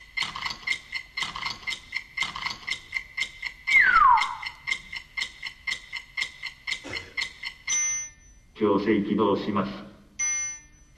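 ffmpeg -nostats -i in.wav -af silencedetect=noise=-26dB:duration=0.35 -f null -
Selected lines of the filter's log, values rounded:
silence_start: 7.99
silence_end: 8.61 | silence_duration: 0.62
silence_start: 9.71
silence_end: 10.20 | silence_duration: 0.49
silence_start: 10.47
silence_end: 10.98 | silence_duration: 0.51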